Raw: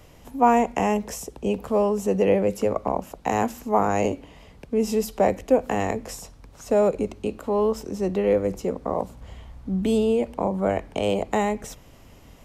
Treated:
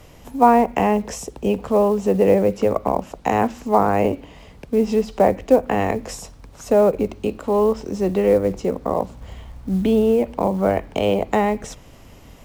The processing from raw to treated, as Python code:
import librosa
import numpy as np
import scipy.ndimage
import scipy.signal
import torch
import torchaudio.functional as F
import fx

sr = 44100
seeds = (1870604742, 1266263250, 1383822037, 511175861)

y = fx.env_lowpass_down(x, sr, base_hz=2000.0, full_db=-16.5)
y = fx.quant_float(y, sr, bits=4)
y = y * librosa.db_to_amplitude(4.5)